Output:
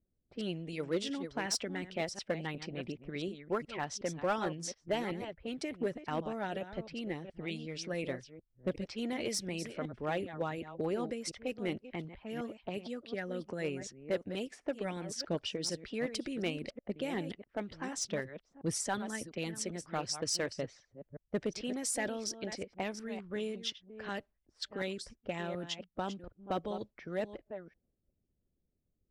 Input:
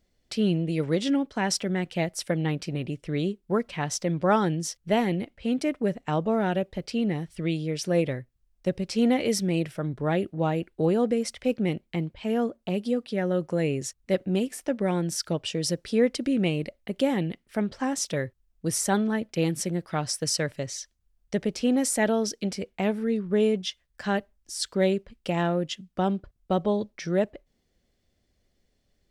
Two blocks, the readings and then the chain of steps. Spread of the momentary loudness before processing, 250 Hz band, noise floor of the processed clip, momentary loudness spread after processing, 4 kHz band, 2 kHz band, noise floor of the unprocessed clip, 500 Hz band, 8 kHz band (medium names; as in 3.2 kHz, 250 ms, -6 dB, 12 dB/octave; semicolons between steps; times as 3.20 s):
7 LU, -13.0 dB, -81 dBFS, 8 LU, -6.5 dB, -7.0 dB, -72 dBFS, -10.5 dB, -7.5 dB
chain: chunks repeated in reverse 365 ms, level -11 dB; level-controlled noise filter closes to 380 Hz, open at -22.5 dBFS; low-pass 11 kHz 12 dB/octave; harmonic-percussive split harmonic -11 dB; in parallel at -6.5 dB: wavefolder -22.5 dBFS; on the sum: trim -8 dB